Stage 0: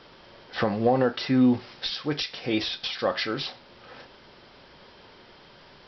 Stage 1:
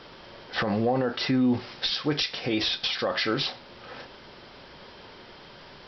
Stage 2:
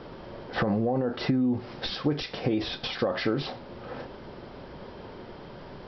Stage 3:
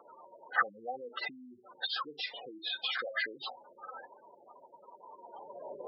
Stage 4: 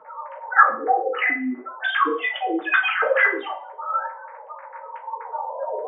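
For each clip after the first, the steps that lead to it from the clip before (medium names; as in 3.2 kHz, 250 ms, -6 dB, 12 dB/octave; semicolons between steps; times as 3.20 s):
peak limiter -20 dBFS, peak gain reduction 10 dB; trim +4 dB
tilt shelf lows +8.5 dB, about 1.3 kHz; compression 10:1, threshold -22 dBFS, peak gain reduction 11 dB
spectral gate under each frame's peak -10 dB strong; high-pass sweep 1.2 kHz -> 530 Hz, 5.05–5.80 s
formants replaced by sine waves; reverberation RT60 0.45 s, pre-delay 3 ms, DRR -4 dB; trim +4 dB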